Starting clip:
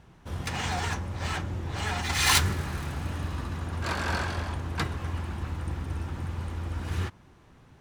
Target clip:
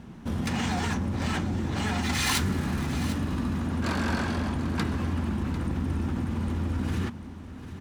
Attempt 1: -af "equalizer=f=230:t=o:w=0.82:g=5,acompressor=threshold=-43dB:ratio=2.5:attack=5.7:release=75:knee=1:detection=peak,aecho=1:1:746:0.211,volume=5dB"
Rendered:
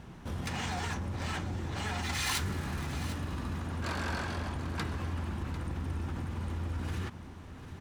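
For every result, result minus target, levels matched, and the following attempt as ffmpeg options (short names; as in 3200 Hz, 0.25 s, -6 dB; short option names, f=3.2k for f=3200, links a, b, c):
compressor: peak gain reduction +5.5 dB; 250 Hz band -4.5 dB
-af "equalizer=f=230:t=o:w=0.82:g=5,acompressor=threshold=-33dB:ratio=2.5:attack=5.7:release=75:knee=1:detection=peak,aecho=1:1:746:0.211,volume=5dB"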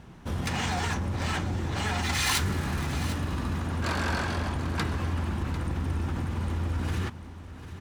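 250 Hz band -4.5 dB
-af "equalizer=f=230:t=o:w=0.82:g=14.5,acompressor=threshold=-33dB:ratio=2.5:attack=5.7:release=75:knee=1:detection=peak,aecho=1:1:746:0.211,volume=5dB"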